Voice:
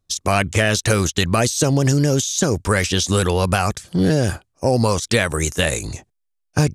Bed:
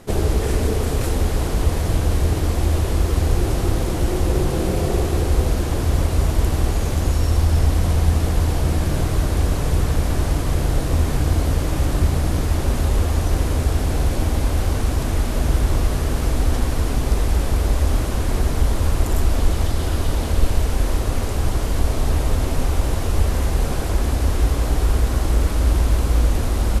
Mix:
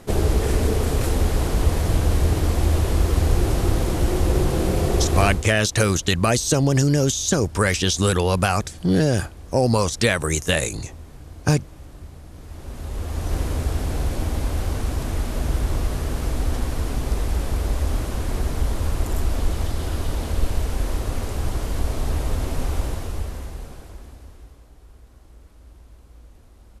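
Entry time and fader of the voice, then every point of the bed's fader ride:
4.90 s, -1.5 dB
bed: 5.26 s -0.5 dB
5.53 s -22 dB
12.3 s -22 dB
13.35 s -4.5 dB
22.8 s -4.5 dB
24.7 s -30 dB

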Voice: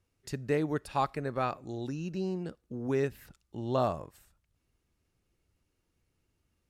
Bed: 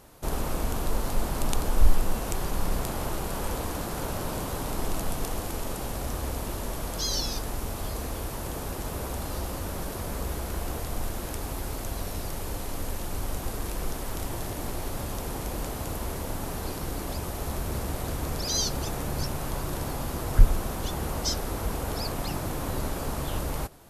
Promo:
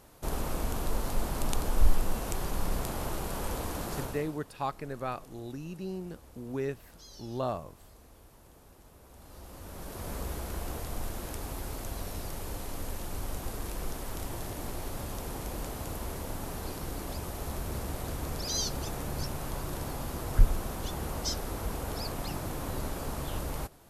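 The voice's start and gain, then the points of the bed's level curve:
3.65 s, -4.0 dB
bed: 4 s -3.5 dB
4.45 s -22.5 dB
9.02 s -22.5 dB
10.09 s -4.5 dB

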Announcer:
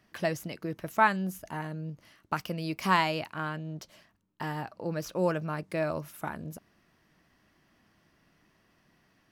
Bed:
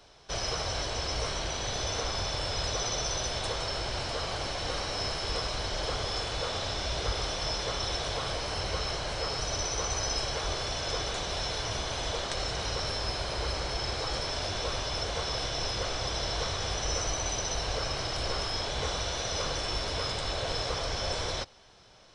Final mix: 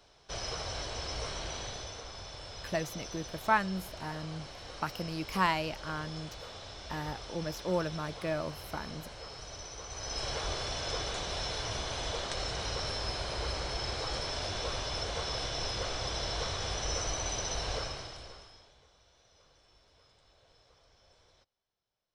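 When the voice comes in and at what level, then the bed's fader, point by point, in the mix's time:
2.50 s, -3.5 dB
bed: 1.58 s -5.5 dB
2.01 s -13 dB
9.86 s -13 dB
10.28 s -3 dB
17.77 s -3 dB
18.87 s -32.5 dB

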